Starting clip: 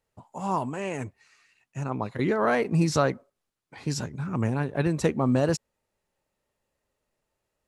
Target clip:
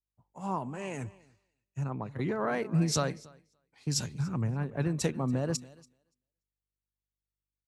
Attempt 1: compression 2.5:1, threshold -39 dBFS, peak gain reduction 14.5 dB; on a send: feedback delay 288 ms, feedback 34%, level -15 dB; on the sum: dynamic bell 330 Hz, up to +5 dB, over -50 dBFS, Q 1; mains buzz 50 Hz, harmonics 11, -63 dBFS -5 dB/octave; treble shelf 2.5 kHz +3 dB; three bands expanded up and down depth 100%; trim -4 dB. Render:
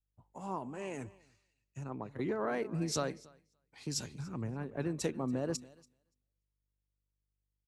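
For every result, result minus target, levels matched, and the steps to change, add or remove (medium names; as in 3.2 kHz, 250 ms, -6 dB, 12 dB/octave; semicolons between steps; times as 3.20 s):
compression: peak gain reduction +5.5 dB; 125 Hz band -4.0 dB
change: compression 2.5:1, threshold -29.5 dBFS, peak gain reduction 8.5 dB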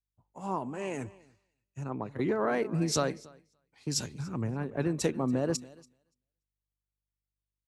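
125 Hz band -4.0 dB
change: dynamic bell 140 Hz, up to +5 dB, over -50 dBFS, Q 1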